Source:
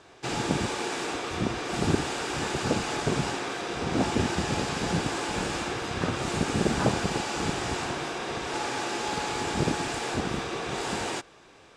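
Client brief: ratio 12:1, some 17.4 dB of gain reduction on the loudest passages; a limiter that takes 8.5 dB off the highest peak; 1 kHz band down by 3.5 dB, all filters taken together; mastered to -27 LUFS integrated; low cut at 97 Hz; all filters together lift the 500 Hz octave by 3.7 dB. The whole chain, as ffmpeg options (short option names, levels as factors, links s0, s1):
-af "highpass=97,equalizer=f=500:t=o:g=6.5,equalizer=f=1000:t=o:g=-7.5,acompressor=threshold=0.0141:ratio=12,volume=5.96,alimiter=limit=0.133:level=0:latency=1"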